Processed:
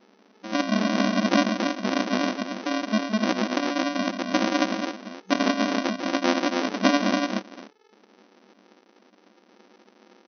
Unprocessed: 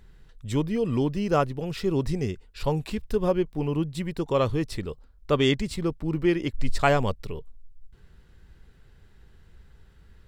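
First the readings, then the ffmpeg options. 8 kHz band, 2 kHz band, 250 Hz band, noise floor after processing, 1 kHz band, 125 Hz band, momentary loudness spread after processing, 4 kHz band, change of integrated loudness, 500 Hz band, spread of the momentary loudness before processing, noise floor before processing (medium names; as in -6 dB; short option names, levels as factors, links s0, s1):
+8.0 dB, +7.0 dB, +4.0 dB, -60 dBFS, +4.0 dB, no reading, 8 LU, +6.0 dB, +2.0 dB, -2.0 dB, 10 LU, -55 dBFS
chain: -af "bandreject=f=810:w=12,aecho=1:1:151.6|279.9:0.355|0.631,aresample=16000,acrusher=samples=37:mix=1:aa=0.000001,aresample=44100,afftfilt=real='re*between(b*sr/4096,190,6200)':imag='im*between(b*sr/4096,190,6200)':win_size=4096:overlap=0.75,volume=1.88"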